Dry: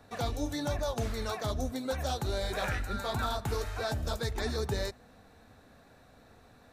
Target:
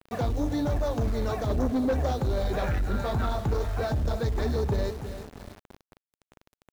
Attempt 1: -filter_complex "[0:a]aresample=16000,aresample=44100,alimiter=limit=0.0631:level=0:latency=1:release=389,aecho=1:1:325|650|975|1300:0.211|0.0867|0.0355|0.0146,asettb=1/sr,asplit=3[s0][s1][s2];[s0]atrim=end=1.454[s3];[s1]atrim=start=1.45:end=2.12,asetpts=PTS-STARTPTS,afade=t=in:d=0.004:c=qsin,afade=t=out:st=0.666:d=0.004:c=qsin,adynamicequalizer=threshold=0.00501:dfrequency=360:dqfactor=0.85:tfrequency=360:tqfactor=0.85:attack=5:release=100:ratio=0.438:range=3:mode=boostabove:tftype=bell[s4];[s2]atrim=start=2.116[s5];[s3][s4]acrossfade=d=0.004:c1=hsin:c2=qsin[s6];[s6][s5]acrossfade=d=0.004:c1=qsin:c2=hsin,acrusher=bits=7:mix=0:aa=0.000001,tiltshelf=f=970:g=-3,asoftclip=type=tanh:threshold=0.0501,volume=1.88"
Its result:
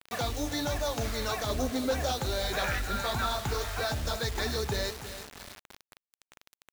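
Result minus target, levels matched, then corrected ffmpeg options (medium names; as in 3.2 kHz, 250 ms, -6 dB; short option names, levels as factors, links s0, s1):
1 kHz band +3.0 dB
-filter_complex "[0:a]aresample=16000,aresample=44100,alimiter=limit=0.0631:level=0:latency=1:release=389,aecho=1:1:325|650|975|1300:0.211|0.0867|0.0355|0.0146,asettb=1/sr,asplit=3[s0][s1][s2];[s0]atrim=end=1.454[s3];[s1]atrim=start=1.45:end=2.12,asetpts=PTS-STARTPTS,afade=t=in:d=0.004:c=qsin,afade=t=out:st=0.666:d=0.004:c=qsin,adynamicequalizer=threshold=0.00501:dfrequency=360:dqfactor=0.85:tfrequency=360:tqfactor=0.85:attack=5:release=100:ratio=0.438:range=3:mode=boostabove:tftype=bell[s4];[s2]atrim=start=2.116[s5];[s3][s4]acrossfade=d=0.004:c1=hsin:c2=qsin[s6];[s6][s5]acrossfade=d=0.004:c1=qsin:c2=hsin,acrusher=bits=7:mix=0:aa=0.000001,tiltshelf=f=970:g=6.5,asoftclip=type=tanh:threshold=0.0501,volume=1.88"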